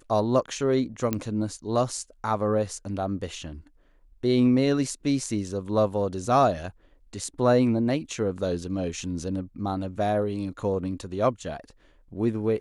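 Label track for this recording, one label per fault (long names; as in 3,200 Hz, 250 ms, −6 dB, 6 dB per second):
1.130000	1.130000	click −12 dBFS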